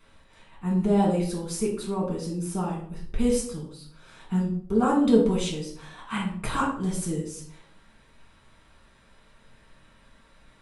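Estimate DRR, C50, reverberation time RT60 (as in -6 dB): -3.5 dB, 5.5 dB, 0.60 s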